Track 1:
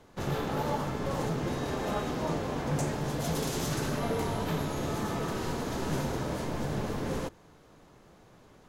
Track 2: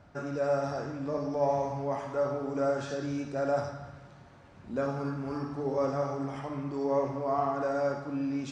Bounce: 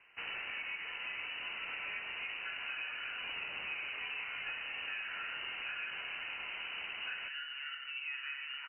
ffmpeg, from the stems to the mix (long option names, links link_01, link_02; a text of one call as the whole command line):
ffmpeg -i stem1.wav -i stem2.wav -filter_complex "[0:a]aemphasis=mode=production:type=riaa,volume=-3dB[link_01];[1:a]lowpass=frequency=1700:width_type=q:width=11,adelay=2300,volume=-10dB[link_02];[link_01][link_02]amix=inputs=2:normalize=0,lowpass=frequency=2600:width_type=q:width=0.5098,lowpass=frequency=2600:width_type=q:width=0.6013,lowpass=frequency=2600:width_type=q:width=0.9,lowpass=frequency=2600:width_type=q:width=2.563,afreqshift=-3100,acompressor=threshold=-38dB:ratio=6" out.wav